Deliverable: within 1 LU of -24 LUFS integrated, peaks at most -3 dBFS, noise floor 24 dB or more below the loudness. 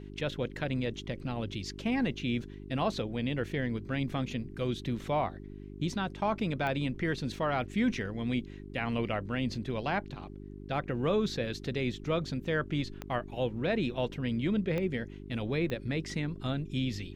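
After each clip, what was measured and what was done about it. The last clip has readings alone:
clicks 4; hum 50 Hz; harmonics up to 400 Hz; hum level -43 dBFS; loudness -33.0 LUFS; peak -17.0 dBFS; loudness target -24.0 LUFS
-> de-click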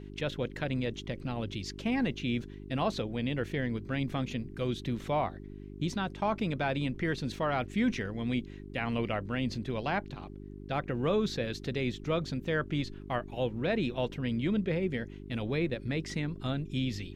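clicks 0; hum 50 Hz; harmonics up to 400 Hz; hum level -43 dBFS
-> de-hum 50 Hz, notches 8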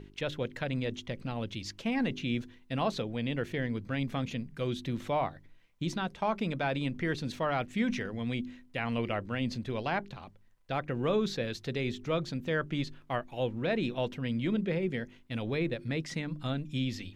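hum none; loudness -33.5 LUFS; peak -18.5 dBFS; loudness target -24.0 LUFS
-> gain +9.5 dB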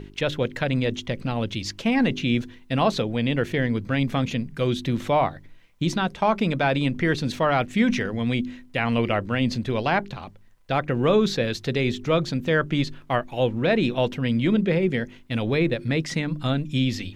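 loudness -24.0 LUFS; peak -9.0 dBFS; noise floor -49 dBFS

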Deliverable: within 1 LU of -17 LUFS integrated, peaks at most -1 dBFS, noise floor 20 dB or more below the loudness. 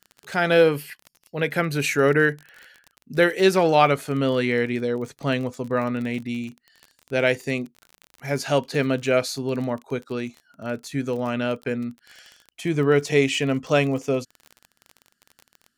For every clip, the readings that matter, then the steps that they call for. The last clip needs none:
ticks 32/s; loudness -23.0 LUFS; peak -4.5 dBFS; loudness target -17.0 LUFS
-> de-click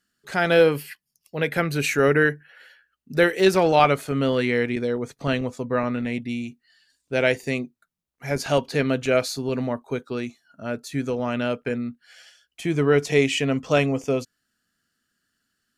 ticks 0/s; loudness -23.0 LUFS; peak -4.5 dBFS; loudness target -17.0 LUFS
-> gain +6 dB; limiter -1 dBFS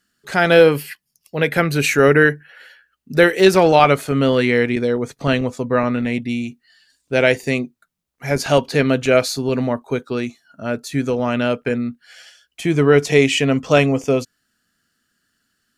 loudness -17.0 LUFS; peak -1.0 dBFS; noise floor -72 dBFS

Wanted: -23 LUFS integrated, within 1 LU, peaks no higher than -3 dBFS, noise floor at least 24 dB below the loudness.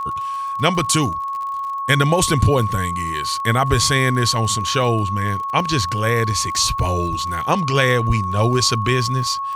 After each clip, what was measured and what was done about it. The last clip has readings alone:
ticks 50/s; steady tone 1100 Hz; tone level -22 dBFS; loudness -18.5 LUFS; peak -1.0 dBFS; loudness target -23.0 LUFS
-> de-click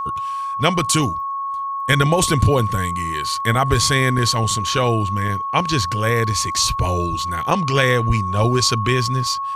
ticks 0/s; steady tone 1100 Hz; tone level -22 dBFS
-> notch 1100 Hz, Q 30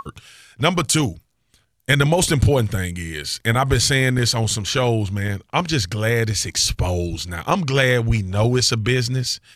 steady tone none; loudness -19.5 LUFS; peak -2.0 dBFS; loudness target -23.0 LUFS
-> gain -3.5 dB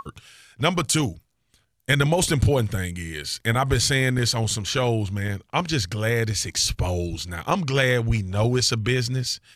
loudness -23.0 LUFS; peak -5.5 dBFS; noise floor -69 dBFS

